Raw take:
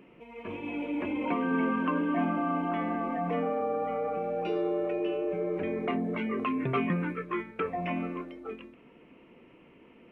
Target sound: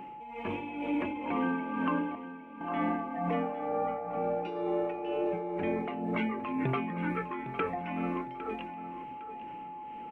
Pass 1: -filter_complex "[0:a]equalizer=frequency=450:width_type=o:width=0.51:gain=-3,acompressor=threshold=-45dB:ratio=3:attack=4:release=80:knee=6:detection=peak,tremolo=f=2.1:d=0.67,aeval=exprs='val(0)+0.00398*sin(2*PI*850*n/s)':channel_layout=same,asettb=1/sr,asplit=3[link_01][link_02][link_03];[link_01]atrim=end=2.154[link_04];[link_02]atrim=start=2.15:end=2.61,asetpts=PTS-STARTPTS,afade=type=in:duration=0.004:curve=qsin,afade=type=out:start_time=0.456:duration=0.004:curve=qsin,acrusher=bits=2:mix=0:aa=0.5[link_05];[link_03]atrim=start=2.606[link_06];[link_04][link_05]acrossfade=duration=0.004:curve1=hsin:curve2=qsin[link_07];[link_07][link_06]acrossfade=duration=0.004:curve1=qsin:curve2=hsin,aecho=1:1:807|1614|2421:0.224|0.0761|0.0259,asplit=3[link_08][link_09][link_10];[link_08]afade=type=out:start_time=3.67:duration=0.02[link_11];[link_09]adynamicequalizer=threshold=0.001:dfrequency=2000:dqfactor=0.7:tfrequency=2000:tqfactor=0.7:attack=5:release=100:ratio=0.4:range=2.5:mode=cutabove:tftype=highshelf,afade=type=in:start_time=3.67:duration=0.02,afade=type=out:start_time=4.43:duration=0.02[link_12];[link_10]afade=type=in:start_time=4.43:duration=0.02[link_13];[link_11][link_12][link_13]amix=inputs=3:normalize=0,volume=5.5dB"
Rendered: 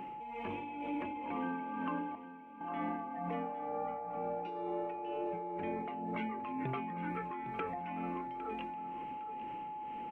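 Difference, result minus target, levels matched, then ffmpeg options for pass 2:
downward compressor: peak gain reduction +8 dB
-filter_complex "[0:a]equalizer=frequency=450:width_type=o:width=0.51:gain=-3,acompressor=threshold=-33dB:ratio=3:attack=4:release=80:knee=6:detection=peak,tremolo=f=2.1:d=0.67,aeval=exprs='val(0)+0.00398*sin(2*PI*850*n/s)':channel_layout=same,asettb=1/sr,asplit=3[link_01][link_02][link_03];[link_01]atrim=end=2.154[link_04];[link_02]atrim=start=2.15:end=2.61,asetpts=PTS-STARTPTS,afade=type=in:duration=0.004:curve=qsin,afade=type=out:start_time=0.456:duration=0.004:curve=qsin,acrusher=bits=2:mix=0:aa=0.5[link_05];[link_03]atrim=start=2.606[link_06];[link_04][link_05]acrossfade=duration=0.004:curve1=hsin:curve2=qsin[link_07];[link_07][link_06]acrossfade=duration=0.004:curve1=qsin:curve2=hsin,aecho=1:1:807|1614|2421:0.224|0.0761|0.0259,asplit=3[link_08][link_09][link_10];[link_08]afade=type=out:start_time=3.67:duration=0.02[link_11];[link_09]adynamicequalizer=threshold=0.001:dfrequency=2000:dqfactor=0.7:tfrequency=2000:tqfactor=0.7:attack=5:release=100:ratio=0.4:range=2.5:mode=cutabove:tftype=highshelf,afade=type=in:start_time=3.67:duration=0.02,afade=type=out:start_time=4.43:duration=0.02[link_12];[link_10]afade=type=in:start_time=4.43:duration=0.02[link_13];[link_11][link_12][link_13]amix=inputs=3:normalize=0,volume=5.5dB"

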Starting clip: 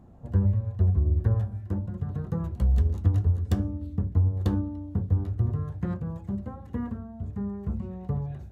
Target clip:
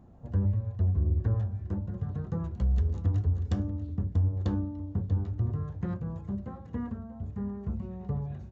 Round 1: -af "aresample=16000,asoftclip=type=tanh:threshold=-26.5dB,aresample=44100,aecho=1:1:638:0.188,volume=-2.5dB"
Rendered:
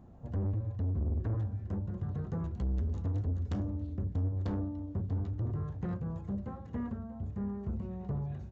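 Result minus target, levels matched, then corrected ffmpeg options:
soft clipping: distortion +13 dB
-af "aresample=16000,asoftclip=type=tanh:threshold=-15dB,aresample=44100,aecho=1:1:638:0.188,volume=-2.5dB"

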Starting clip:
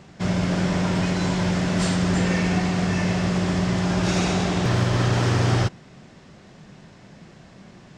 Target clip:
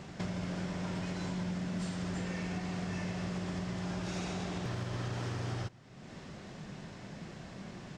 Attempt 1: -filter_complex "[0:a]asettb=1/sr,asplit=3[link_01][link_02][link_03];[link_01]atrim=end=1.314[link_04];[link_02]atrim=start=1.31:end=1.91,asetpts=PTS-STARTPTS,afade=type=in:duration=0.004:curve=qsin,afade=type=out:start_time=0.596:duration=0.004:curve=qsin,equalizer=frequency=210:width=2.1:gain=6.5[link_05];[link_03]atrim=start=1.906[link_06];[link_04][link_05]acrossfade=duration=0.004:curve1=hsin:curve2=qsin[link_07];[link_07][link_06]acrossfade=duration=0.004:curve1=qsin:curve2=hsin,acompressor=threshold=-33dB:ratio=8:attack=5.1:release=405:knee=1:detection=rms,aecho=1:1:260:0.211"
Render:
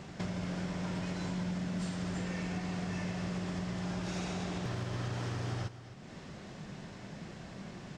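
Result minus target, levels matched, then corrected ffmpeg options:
echo-to-direct +12 dB
-filter_complex "[0:a]asettb=1/sr,asplit=3[link_01][link_02][link_03];[link_01]atrim=end=1.314[link_04];[link_02]atrim=start=1.31:end=1.91,asetpts=PTS-STARTPTS,afade=type=in:duration=0.004:curve=qsin,afade=type=out:start_time=0.596:duration=0.004:curve=qsin,equalizer=frequency=210:width=2.1:gain=6.5[link_05];[link_03]atrim=start=1.906[link_06];[link_04][link_05]acrossfade=duration=0.004:curve1=hsin:curve2=qsin[link_07];[link_07][link_06]acrossfade=duration=0.004:curve1=qsin:curve2=hsin,acompressor=threshold=-33dB:ratio=8:attack=5.1:release=405:knee=1:detection=rms,aecho=1:1:260:0.0531"

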